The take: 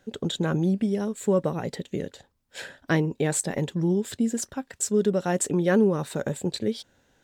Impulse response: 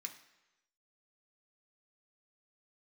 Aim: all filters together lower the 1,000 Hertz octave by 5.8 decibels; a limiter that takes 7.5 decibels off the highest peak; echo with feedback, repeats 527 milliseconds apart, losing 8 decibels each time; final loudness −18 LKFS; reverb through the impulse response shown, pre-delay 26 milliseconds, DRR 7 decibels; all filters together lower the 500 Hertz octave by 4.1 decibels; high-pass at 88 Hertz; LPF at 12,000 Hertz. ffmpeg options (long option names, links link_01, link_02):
-filter_complex "[0:a]highpass=88,lowpass=12000,equalizer=frequency=500:width_type=o:gain=-4,equalizer=frequency=1000:width_type=o:gain=-6.5,alimiter=limit=-20dB:level=0:latency=1,aecho=1:1:527|1054|1581|2108|2635:0.398|0.159|0.0637|0.0255|0.0102,asplit=2[link_01][link_02];[1:a]atrim=start_sample=2205,adelay=26[link_03];[link_02][link_03]afir=irnorm=-1:irlink=0,volume=-3.5dB[link_04];[link_01][link_04]amix=inputs=2:normalize=0,volume=11dB"